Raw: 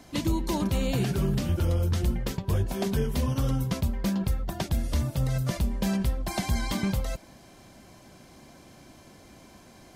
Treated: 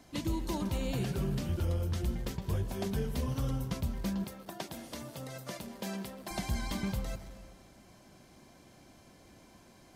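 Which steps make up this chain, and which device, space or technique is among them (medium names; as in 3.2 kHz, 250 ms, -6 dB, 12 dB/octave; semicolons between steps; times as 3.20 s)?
saturated reverb return (on a send at -8.5 dB: reverberation RT60 1.3 s, pre-delay 120 ms + saturation -26 dBFS, distortion -12 dB); 4.24–6.31 s: on the sum: high-pass 260 Hz 12 dB/octave; trim -7 dB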